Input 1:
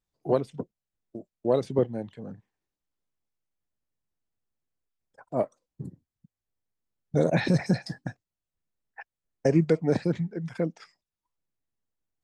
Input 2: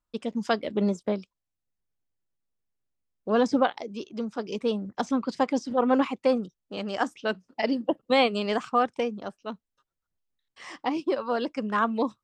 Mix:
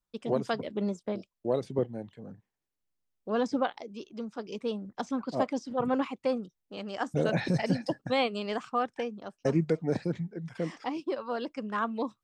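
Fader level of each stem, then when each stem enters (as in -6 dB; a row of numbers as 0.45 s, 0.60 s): -5.0 dB, -6.0 dB; 0.00 s, 0.00 s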